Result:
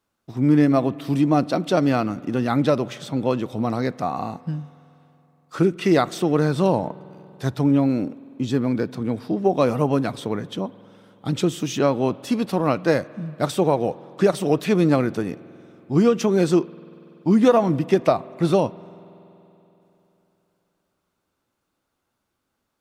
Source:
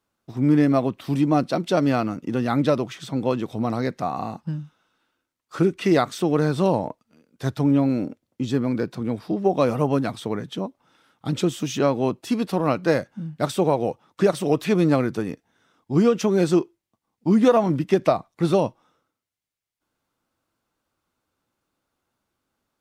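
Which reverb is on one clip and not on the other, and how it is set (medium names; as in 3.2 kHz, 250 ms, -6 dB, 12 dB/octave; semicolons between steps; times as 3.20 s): spring tank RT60 3.4 s, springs 47 ms, chirp 30 ms, DRR 20 dB; trim +1 dB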